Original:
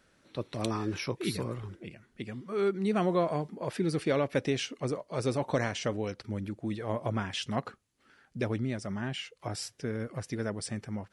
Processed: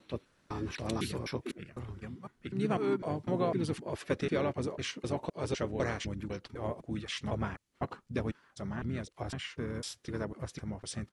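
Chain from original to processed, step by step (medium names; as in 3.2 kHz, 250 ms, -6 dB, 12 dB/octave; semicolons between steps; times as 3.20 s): slices played last to first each 252 ms, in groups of 2; harmony voices -7 st -7 dB, -5 st -10 dB, -3 st -15 dB; trim -4 dB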